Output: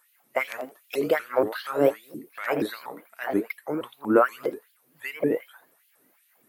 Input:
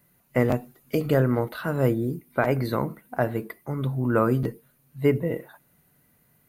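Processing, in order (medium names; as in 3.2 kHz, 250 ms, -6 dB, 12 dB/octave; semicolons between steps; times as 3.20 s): thinning echo 85 ms, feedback 17%, high-pass 420 Hz, level -11 dB; LFO high-pass sine 2.6 Hz 290–3100 Hz; vibrato with a chosen wave saw up 4.2 Hz, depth 250 cents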